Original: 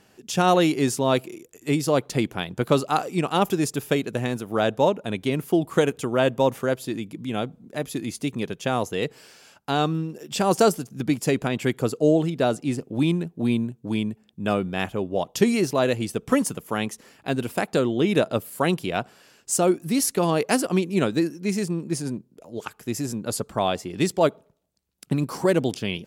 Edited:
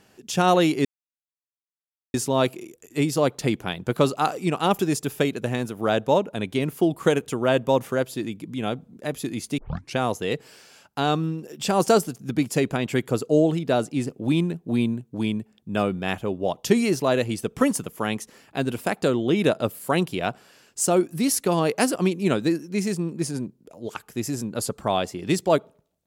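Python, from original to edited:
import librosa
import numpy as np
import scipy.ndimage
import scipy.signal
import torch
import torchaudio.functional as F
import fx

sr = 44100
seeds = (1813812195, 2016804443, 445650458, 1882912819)

y = fx.edit(x, sr, fx.insert_silence(at_s=0.85, length_s=1.29),
    fx.tape_start(start_s=8.29, length_s=0.39), tone=tone)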